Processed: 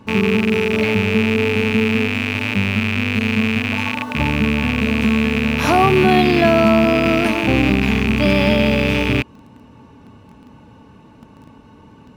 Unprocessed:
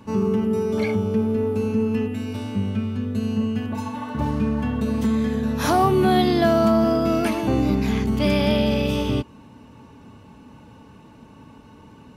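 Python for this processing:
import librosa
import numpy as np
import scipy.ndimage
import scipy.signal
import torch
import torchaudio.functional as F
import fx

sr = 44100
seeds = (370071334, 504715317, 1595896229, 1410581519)

p1 = fx.rattle_buzz(x, sr, strikes_db=-33.0, level_db=-12.0)
p2 = fx.high_shelf(p1, sr, hz=6000.0, db=-7.5)
p3 = fx.quant_dither(p2, sr, seeds[0], bits=6, dither='none')
p4 = p2 + (p3 * 10.0 ** (-10.5 / 20.0))
y = p4 * 10.0 ** (2.0 / 20.0)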